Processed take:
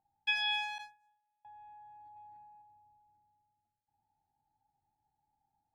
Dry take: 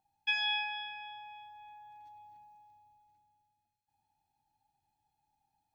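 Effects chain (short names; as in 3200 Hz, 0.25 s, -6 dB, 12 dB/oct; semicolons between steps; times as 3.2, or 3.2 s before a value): Wiener smoothing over 15 samples; 0.78–1.45 gate -46 dBFS, range -32 dB; 2.16–2.62 bell 2000 Hz +7 dB 1.8 oct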